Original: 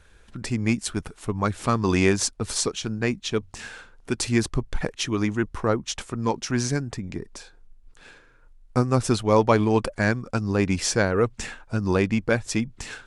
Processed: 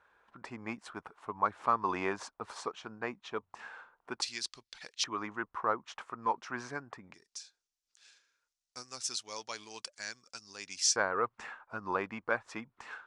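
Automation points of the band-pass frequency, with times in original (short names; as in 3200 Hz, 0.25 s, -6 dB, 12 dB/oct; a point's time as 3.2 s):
band-pass, Q 2.2
1000 Hz
from 4.22 s 4600 Hz
from 5.04 s 1100 Hz
from 7.14 s 5700 Hz
from 10.96 s 1100 Hz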